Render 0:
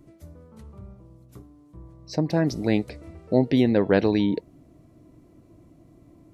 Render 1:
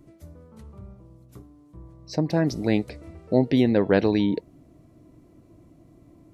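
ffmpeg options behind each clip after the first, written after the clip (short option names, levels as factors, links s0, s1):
-af anull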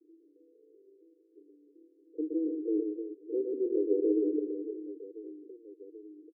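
-af "asuperpass=centerf=380:order=12:qfactor=2.1,aecho=1:1:120|312|619.2|1111|1897:0.631|0.398|0.251|0.158|0.1,volume=0.531"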